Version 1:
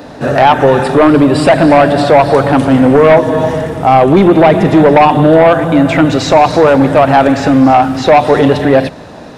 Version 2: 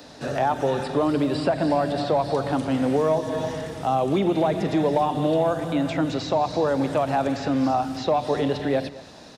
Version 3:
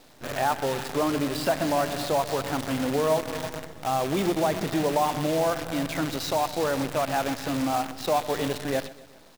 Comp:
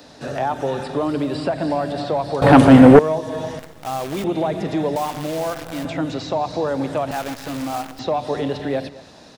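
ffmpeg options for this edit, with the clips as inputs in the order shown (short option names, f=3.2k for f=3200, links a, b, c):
-filter_complex "[2:a]asplit=3[a][b][c];[1:a]asplit=5[d][e][f][g][h];[d]atrim=end=2.422[i];[0:a]atrim=start=2.418:end=2.992[j];[e]atrim=start=2.988:end=3.592[k];[a]atrim=start=3.588:end=4.242[l];[f]atrim=start=4.238:end=4.962[m];[b]atrim=start=4.958:end=5.852[n];[g]atrim=start=5.848:end=7.112[o];[c]atrim=start=7.108:end=7.992[p];[h]atrim=start=7.988[q];[i][j]acrossfade=d=0.004:c1=hsin:c2=hsin[r];[r][k]acrossfade=d=0.004:c1=hsin:c2=hsin[s];[s][l]acrossfade=d=0.004:c1=hsin:c2=hsin[t];[t][m]acrossfade=d=0.004:c1=hsin:c2=hsin[u];[u][n]acrossfade=d=0.004:c1=hsin:c2=hsin[v];[v][o]acrossfade=d=0.004:c1=hsin:c2=hsin[w];[w][p]acrossfade=d=0.004:c1=hsin:c2=hsin[x];[x][q]acrossfade=d=0.004:c1=hsin:c2=hsin"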